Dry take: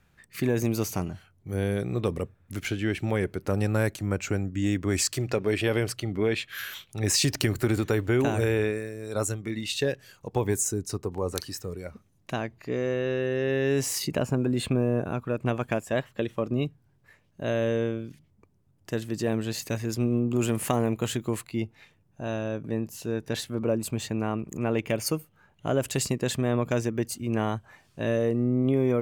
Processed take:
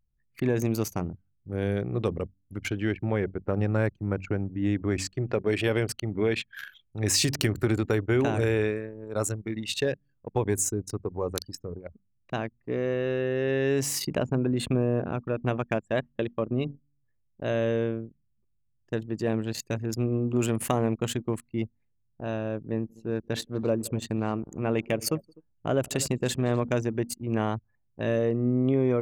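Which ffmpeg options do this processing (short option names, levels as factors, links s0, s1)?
-filter_complex "[0:a]asettb=1/sr,asplit=3[s0][s1][s2];[s0]atrim=end=2.944[s3];[s1]atrim=start=2.94:end=5.47,asetpts=PTS-STARTPTS,afade=t=in:d=0.004:c=qsin,afade=t=out:st=2.526:d=0.004:c=qsin,lowpass=f=2500:p=1[s4];[s2]atrim=start=5.466[s5];[s3][s4]acrossfade=d=0.004:c1=hsin:c2=qsin[s6];[s6][s5]acrossfade=d=0.004:c1=qsin:c2=hsin,asettb=1/sr,asplit=3[s7][s8][s9];[s7]atrim=end=22.614[s10];[s8]atrim=start=22.61:end=26.65,asetpts=PTS-STARTPTS,afade=t=in:d=0.004:c=qsin,afade=t=out:st=4.036:d=0.004:c=qsin,aecho=1:1:170|251:0.119|0.141,atrim=end_sample=178164[s11];[s9]atrim=start=26.646[s12];[s10][s11]acrossfade=d=0.004:c1=hsin:c2=qsin[s13];[s13][s12]acrossfade=d=0.004:c1=qsin:c2=hsin,bandreject=f=47.53:t=h:w=4,bandreject=f=95.06:t=h:w=4,bandreject=f=142.59:t=h:w=4,bandreject=f=190.12:t=h:w=4,bandreject=f=237.65:t=h:w=4,bandreject=f=285.18:t=h:w=4,anlmdn=10"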